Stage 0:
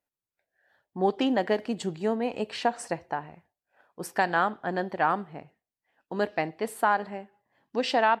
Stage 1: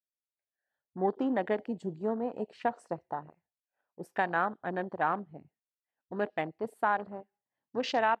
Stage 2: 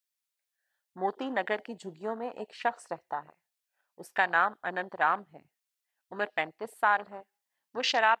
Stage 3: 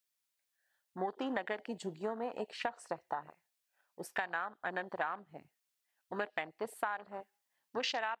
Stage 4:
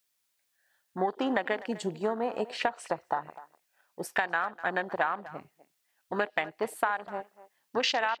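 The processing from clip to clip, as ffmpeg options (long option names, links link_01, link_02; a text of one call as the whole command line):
ffmpeg -i in.wav -af "afwtdn=0.0178,volume=-4.5dB" out.wav
ffmpeg -i in.wav -af "tiltshelf=frequency=660:gain=-9.5" out.wav
ffmpeg -i in.wav -af "acompressor=threshold=-34dB:ratio=12,volume=1.5dB" out.wav
ffmpeg -i in.wav -filter_complex "[0:a]asplit=2[link_01][link_02];[link_02]adelay=250,highpass=300,lowpass=3400,asoftclip=type=hard:threshold=-26dB,volume=-17dB[link_03];[link_01][link_03]amix=inputs=2:normalize=0,volume=8dB" out.wav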